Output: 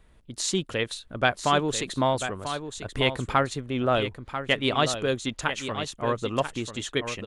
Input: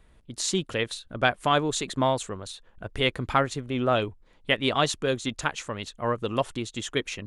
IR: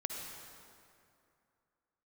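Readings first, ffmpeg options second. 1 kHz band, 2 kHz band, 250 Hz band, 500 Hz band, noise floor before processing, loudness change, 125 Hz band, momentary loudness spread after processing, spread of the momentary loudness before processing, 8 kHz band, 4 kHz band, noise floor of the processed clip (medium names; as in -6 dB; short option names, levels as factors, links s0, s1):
+0.5 dB, +0.5 dB, +0.5 dB, +0.5 dB, -58 dBFS, 0.0 dB, +0.5 dB, 8 LU, 12 LU, +0.5 dB, +0.5 dB, -56 dBFS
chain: -af "aecho=1:1:991:0.335"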